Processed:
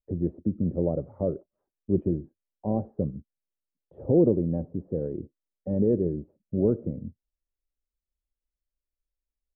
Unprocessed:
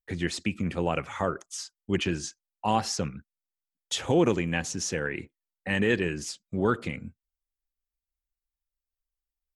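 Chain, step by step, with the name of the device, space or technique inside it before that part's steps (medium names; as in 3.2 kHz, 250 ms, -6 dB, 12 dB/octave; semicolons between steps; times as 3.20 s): under water (low-pass 500 Hz 24 dB/octave; peaking EQ 590 Hz +8.5 dB 0.21 oct); trim +3 dB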